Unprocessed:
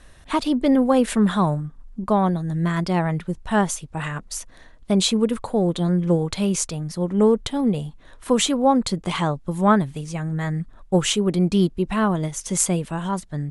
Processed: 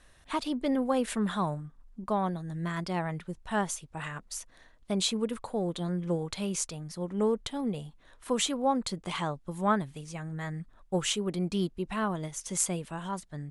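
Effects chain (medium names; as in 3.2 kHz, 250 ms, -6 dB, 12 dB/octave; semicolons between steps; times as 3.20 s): bass shelf 470 Hz -5 dB; trim -7.5 dB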